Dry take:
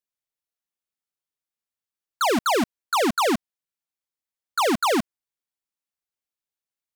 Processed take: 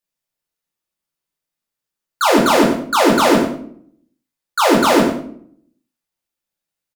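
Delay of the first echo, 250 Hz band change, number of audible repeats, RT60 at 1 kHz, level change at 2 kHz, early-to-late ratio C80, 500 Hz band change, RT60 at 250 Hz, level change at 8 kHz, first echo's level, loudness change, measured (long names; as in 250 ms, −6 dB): 95 ms, +10.5 dB, 1, 0.55 s, +8.0 dB, 7.5 dB, +9.5 dB, 0.85 s, +7.0 dB, −10.0 dB, +8.5 dB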